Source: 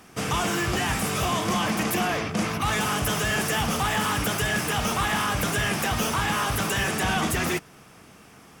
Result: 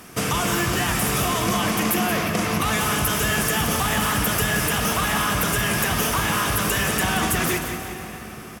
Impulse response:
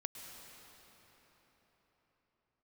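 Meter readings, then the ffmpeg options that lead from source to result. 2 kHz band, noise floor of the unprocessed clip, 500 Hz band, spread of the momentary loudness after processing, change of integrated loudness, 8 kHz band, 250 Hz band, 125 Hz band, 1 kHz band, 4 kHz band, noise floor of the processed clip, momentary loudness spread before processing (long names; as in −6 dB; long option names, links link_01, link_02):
+3.0 dB, −50 dBFS, +3.0 dB, 4 LU, +3.5 dB, +5.5 dB, +3.0 dB, +3.0 dB, +2.5 dB, +3.0 dB, −37 dBFS, 2 LU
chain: -filter_complex "[0:a]equalizer=frequency=13000:width=1:gain=8,bandreject=frequency=810:width=13,acompressor=threshold=-27dB:ratio=4,aecho=1:1:177|354|531|708|885:0.355|0.145|0.0596|0.0245|0.01,asplit=2[link_01][link_02];[1:a]atrim=start_sample=2205[link_03];[link_02][link_03]afir=irnorm=-1:irlink=0,volume=4.5dB[link_04];[link_01][link_04]amix=inputs=2:normalize=0"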